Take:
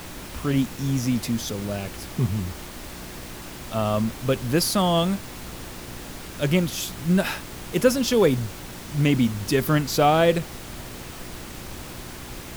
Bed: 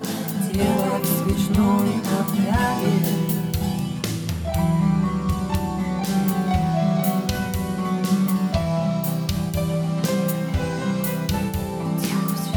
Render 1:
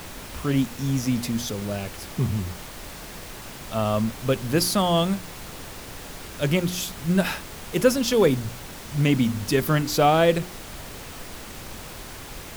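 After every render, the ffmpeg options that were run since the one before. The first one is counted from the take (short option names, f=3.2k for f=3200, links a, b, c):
-af "bandreject=f=60:t=h:w=4,bandreject=f=120:t=h:w=4,bandreject=f=180:t=h:w=4,bandreject=f=240:t=h:w=4,bandreject=f=300:t=h:w=4,bandreject=f=360:t=h:w=4"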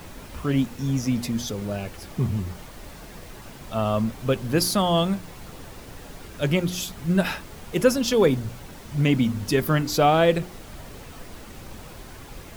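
-af "afftdn=nr=7:nf=-39"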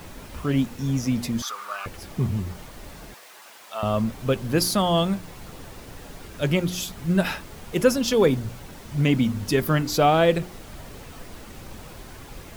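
-filter_complex "[0:a]asettb=1/sr,asplit=3[a][b][c];[a]atrim=end=1.424[d];[b]atrim=start=1.42:end=1.86,asetpts=PTS-STARTPTS,afade=t=in:d=0.004:c=qsin,afade=t=out:st=0.436:d=0.004:c=qsin,highpass=f=1.2k:t=q:w=9.4[e];[c]atrim=start=1.856[f];[d][e]acrossfade=d=0.004:c1=hsin:c2=qsin[g];[g][f]acrossfade=d=0.004:c1=qsin:c2=hsin,asettb=1/sr,asplit=3[h][i][j];[h]atrim=end=3.144[k];[i]atrim=start=3.14:end=3.83,asetpts=PTS-STARTPTS,afade=t=in:d=0.004:c=qsin,afade=t=out:st=0.686:d=0.004:c=qsin,highpass=780[l];[j]atrim=start=3.826[m];[k][l]acrossfade=d=0.004:c1=hsin:c2=qsin[n];[n][m]acrossfade=d=0.004:c1=qsin:c2=hsin"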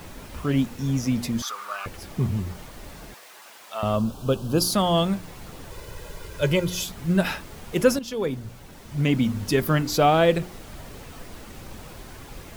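-filter_complex "[0:a]asettb=1/sr,asplit=3[a][b][c];[a]atrim=end=3.964[d];[b]atrim=start=3.96:end=4.73,asetpts=PTS-STARTPTS,afade=t=in:d=0.004:c=qsin,afade=t=out:st=0.766:d=0.004:c=qsin,asuperstop=centerf=2000:order=4:qfactor=1.5[e];[c]atrim=start=4.726[f];[d][e]acrossfade=d=0.004:c1=hsin:c2=qsin[g];[g][f]acrossfade=d=0.004:c1=qsin:c2=hsin,asettb=1/sr,asplit=3[h][i][j];[h]atrim=end=5.704[k];[i]atrim=start=5.7:end=6.83,asetpts=PTS-STARTPTS,afade=t=in:d=0.004:c=qsin,afade=t=out:st=1.126:d=0.004:c=qsin,aecho=1:1:2:0.65,atrim=end_sample=49833[l];[j]atrim=start=6.826[m];[k][l]acrossfade=d=0.004:c1=hsin:c2=qsin[n];[n][m]acrossfade=d=0.004:c1=qsin:c2=hsin,asplit=2[o][p];[o]atrim=end=7.99,asetpts=PTS-STARTPTS,afade=t=out:st=7.986:d=0.004:c=hsin:silence=0.251189[q];[p]atrim=start=7.99,asetpts=PTS-STARTPTS,afade=t=in:d=1.37:silence=0.251189[r];[q][r]concat=n=2:v=0:a=1"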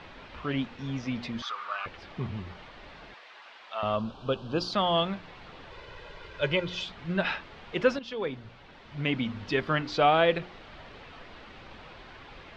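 -af "lowpass=f=3.8k:w=0.5412,lowpass=f=3.8k:w=1.3066,lowshelf=f=450:g=-11.5"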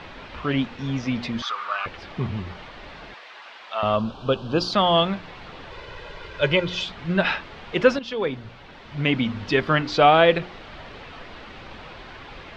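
-af "volume=7dB"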